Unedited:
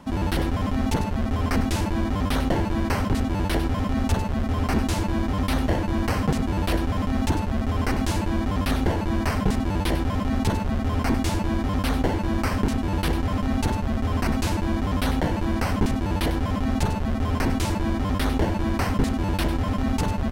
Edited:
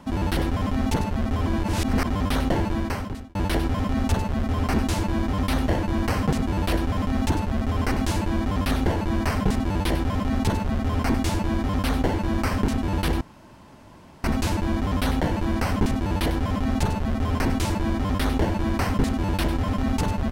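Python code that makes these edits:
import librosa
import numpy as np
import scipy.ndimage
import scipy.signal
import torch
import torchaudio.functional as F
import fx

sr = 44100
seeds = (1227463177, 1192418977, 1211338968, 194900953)

y = fx.edit(x, sr, fx.reverse_span(start_s=1.47, length_s=0.6),
    fx.fade_out_span(start_s=2.69, length_s=0.66),
    fx.room_tone_fill(start_s=13.21, length_s=1.03), tone=tone)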